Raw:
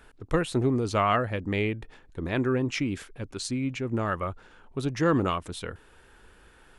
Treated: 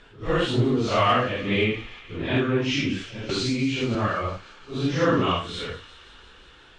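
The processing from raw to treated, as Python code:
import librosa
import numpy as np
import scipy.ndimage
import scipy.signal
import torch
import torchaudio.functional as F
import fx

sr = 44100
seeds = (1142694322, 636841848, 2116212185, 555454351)

p1 = fx.phase_scramble(x, sr, seeds[0], window_ms=200)
p2 = scipy.signal.sosfilt(scipy.signal.butter(4, 6700.0, 'lowpass', fs=sr, output='sos'), p1)
p3 = fx.peak_eq(p2, sr, hz=3200.0, db=7.5, octaves=0.72)
p4 = fx.clip_asym(p3, sr, top_db=-18.0, bottom_db=-17.0)
p5 = p3 + (p4 * 10.0 ** (-6.5 / 20.0))
p6 = fx.echo_wet_highpass(p5, sr, ms=175, feedback_pct=76, hz=2100.0, wet_db=-15.5)
y = fx.band_squash(p6, sr, depth_pct=100, at=(3.29, 3.95))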